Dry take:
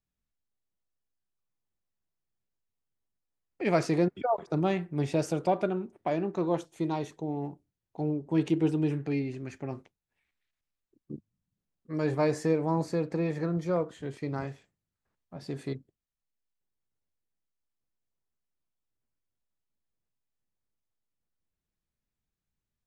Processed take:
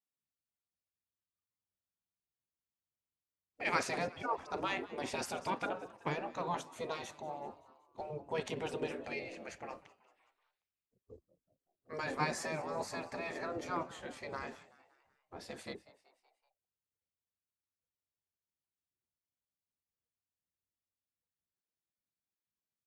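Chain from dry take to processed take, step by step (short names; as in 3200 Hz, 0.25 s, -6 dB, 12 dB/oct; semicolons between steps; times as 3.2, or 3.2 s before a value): spectral noise reduction 11 dB; frequency-shifting echo 0.189 s, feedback 53%, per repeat +92 Hz, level -20 dB; spectral gate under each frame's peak -10 dB weak; gain +1.5 dB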